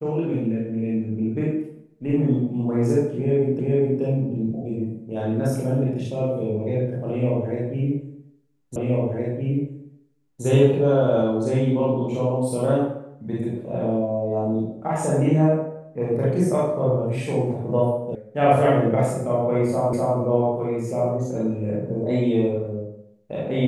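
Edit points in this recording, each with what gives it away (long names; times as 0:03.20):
0:03.59: the same again, the last 0.42 s
0:08.76: the same again, the last 1.67 s
0:18.15: cut off before it has died away
0:19.93: the same again, the last 0.25 s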